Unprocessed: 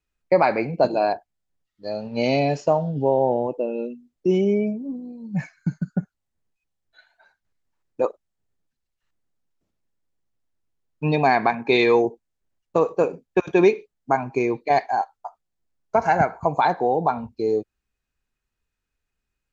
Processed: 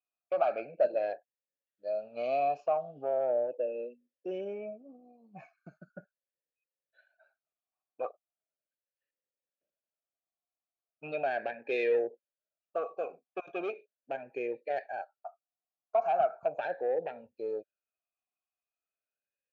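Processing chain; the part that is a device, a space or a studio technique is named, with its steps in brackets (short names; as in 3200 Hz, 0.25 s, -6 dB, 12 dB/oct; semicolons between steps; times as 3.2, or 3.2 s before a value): talk box (tube stage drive 13 dB, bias 0.3; vowel sweep a-e 0.38 Hz)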